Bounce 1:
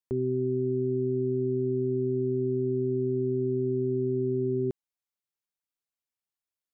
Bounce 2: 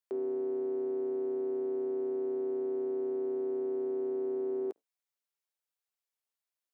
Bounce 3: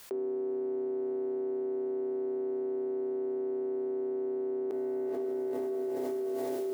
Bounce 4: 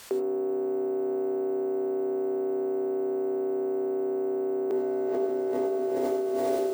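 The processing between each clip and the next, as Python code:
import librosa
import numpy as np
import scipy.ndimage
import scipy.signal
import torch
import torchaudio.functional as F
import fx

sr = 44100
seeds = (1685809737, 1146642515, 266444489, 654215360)

y1 = fx.octave_divider(x, sr, octaves=2, level_db=1.0)
y1 = scipy.signal.sosfilt(scipy.signal.butter(4, 400.0, 'highpass', fs=sr, output='sos'), y1)
y2 = fx.echo_diffused(y1, sr, ms=474, feedback_pct=56, wet_db=-14.5)
y2 = fx.env_flatten(y2, sr, amount_pct=100)
y3 = fx.rev_gated(y2, sr, seeds[0], gate_ms=120, shape='rising', drr_db=6.0)
y3 = np.repeat(scipy.signal.resample_poly(y3, 1, 2), 2)[:len(y3)]
y3 = y3 * 10.0 ** (7.0 / 20.0)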